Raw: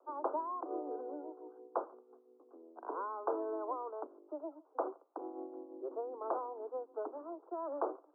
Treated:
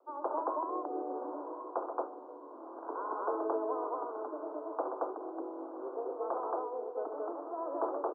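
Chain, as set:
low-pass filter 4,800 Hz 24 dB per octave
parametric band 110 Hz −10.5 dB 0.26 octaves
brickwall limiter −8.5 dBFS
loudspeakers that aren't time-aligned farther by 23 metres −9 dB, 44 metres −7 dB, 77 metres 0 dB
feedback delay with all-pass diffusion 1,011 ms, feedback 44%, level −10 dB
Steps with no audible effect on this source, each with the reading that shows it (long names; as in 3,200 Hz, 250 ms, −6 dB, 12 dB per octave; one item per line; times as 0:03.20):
low-pass filter 4,800 Hz: nothing at its input above 1,500 Hz
parametric band 110 Hz: nothing at its input below 240 Hz
brickwall limiter −8.5 dBFS: peak of its input −21.5 dBFS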